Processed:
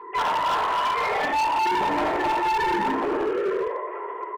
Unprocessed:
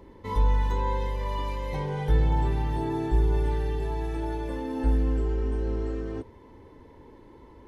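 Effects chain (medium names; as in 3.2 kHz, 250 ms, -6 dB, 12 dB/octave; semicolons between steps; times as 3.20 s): formants replaced by sine waves; high-pass 810 Hz 12 dB/octave; comb 6.8 ms, depth 33%; frequency-shifting echo 133 ms, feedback 48%, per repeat +52 Hz, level -5 dB; in parallel at +2 dB: gain riding within 4 dB 0.5 s; on the sum: time stretch by phase-locked vocoder 0.57×; compression 2:1, threshold -35 dBFS, peak gain reduction 11.5 dB; distance through air 290 m; simulated room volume 590 m³, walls furnished, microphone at 9.2 m; overload inside the chain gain 20.5 dB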